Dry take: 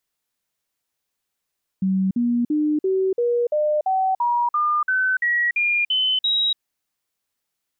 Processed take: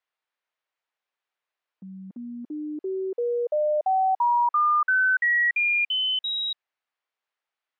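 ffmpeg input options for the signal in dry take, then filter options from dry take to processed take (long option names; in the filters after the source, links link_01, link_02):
-f lavfi -i "aevalsrc='0.141*clip(min(mod(t,0.34),0.29-mod(t,0.34))/0.005,0,1)*sin(2*PI*190*pow(2,floor(t/0.34)/3)*mod(t,0.34))':duration=4.76:sample_rate=44100"
-af "highpass=590,lowpass=2600"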